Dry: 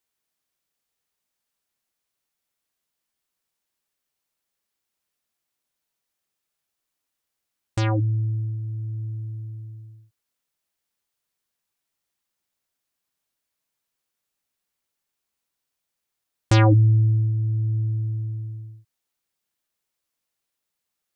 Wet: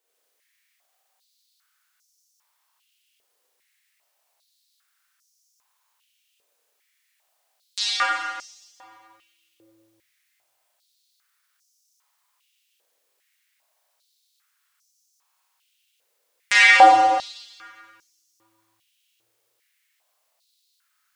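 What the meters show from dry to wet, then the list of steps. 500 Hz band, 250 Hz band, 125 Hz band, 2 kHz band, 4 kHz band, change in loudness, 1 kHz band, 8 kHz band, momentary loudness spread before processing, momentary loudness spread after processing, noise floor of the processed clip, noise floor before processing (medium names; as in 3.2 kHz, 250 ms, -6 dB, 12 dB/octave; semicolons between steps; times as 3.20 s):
+2.5 dB, -9.5 dB, under -40 dB, +17.5 dB, +13.5 dB, +6.0 dB, +16.5 dB, no reading, 19 LU, 18 LU, -72 dBFS, -83 dBFS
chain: Schroeder reverb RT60 1.8 s, combs from 30 ms, DRR -6 dB; step-sequenced high-pass 2.5 Hz 480–5800 Hz; trim +3 dB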